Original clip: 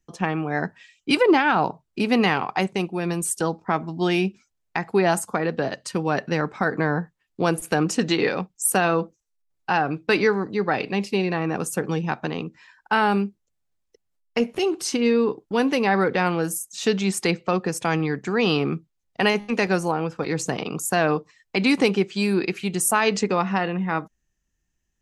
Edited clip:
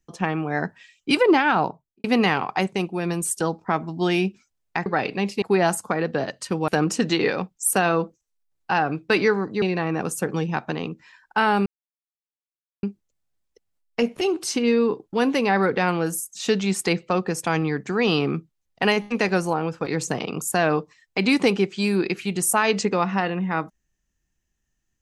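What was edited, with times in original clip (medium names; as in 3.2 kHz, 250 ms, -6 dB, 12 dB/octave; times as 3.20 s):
1.55–2.04 s: studio fade out
6.12–7.67 s: delete
10.61–11.17 s: move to 4.86 s
13.21 s: insert silence 1.17 s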